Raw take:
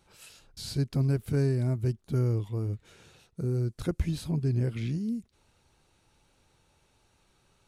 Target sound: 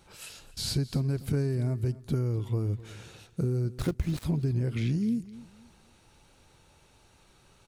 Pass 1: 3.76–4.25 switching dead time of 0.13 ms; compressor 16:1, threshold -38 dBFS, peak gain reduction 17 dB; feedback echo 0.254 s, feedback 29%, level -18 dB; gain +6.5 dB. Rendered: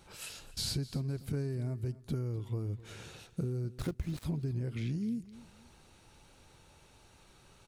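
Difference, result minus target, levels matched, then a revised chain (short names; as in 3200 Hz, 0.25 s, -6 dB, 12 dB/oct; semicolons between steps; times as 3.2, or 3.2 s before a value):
compressor: peak gain reduction +7 dB
3.76–4.25 switching dead time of 0.13 ms; compressor 16:1, threshold -30.5 dBFS, peak gain reduction 10 dB; feedback echo 0.254 s, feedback 29%, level -18 dB; gain +6.5 dB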